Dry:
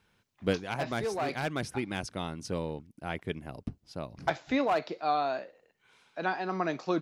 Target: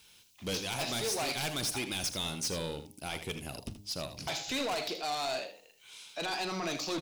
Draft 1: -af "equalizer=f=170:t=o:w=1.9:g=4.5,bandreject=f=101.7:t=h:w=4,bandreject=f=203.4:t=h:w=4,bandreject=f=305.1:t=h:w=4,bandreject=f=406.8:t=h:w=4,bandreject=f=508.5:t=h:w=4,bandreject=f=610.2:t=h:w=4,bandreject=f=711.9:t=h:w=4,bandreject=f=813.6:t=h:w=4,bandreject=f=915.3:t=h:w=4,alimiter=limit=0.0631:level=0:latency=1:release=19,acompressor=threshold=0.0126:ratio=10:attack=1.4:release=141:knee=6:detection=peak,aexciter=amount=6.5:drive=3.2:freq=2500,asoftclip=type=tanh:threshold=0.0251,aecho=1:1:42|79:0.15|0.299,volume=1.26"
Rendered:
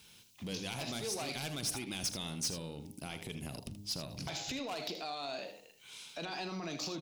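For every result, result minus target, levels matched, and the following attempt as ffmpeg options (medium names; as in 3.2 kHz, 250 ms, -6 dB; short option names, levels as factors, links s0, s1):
compression: peak gain reduction +12 dB; 125 Hz band +3.5 dB
-af "equalizer=f=170:t=o:w=1.9:g=4.5,bandreject=f=101.7:t=h:w=4,bandreject=f=203.4:t=h:w=4,bandreject=f=305.1:t=h:w=4,bandreject=f=406.8:t=h:w=4,bandreject=f=508.5:t=h:w=4,bandreject=f=610.2:t=h:w=4,bandreject=f=711.9:t=h:w=4,bandreject=f=813.6:t=h:w=4,bandreject=f=915.3:t=h:w=4,alimiter=limit=0.0631:level=0:latency=1:release=19,aexciter=amount=6.5:drive=3.2:freq=2500,asoftclip=type=tanh:threshold=0.0251,aecho=1:1:42|79:0.15|0.299,volume=1.26"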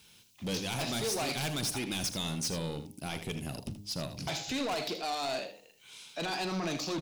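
125 Hz band +4.5 dB
-af "equalizer=f=170:t=o:w=1.9:g=-3,bandreject=f=101.7:t=h:w=4,bandreject=f=203.4:t=h:w=4,bandreject=f=305.1:t=h:w=4,bandreject=f=406.8:t=h:w=4,bandreject=f=508.5:t=h:w=4,bandreject=f=610.2:t=h:w=4,bandreject=f=711.9:t=h:w=4,bandreject=f=813.6:t=h:w=4,bandreject=f=915.3:t=h:w=4,alimiter=limit=0.0631:level=0:latency=1:release=19,aexciter=amount=6.5:drive=3.2:freq=2500,asoftclip=type=tanh:threshold=0.0251,aecho=1:1:42|79:0.15|0.299,volume=1.26"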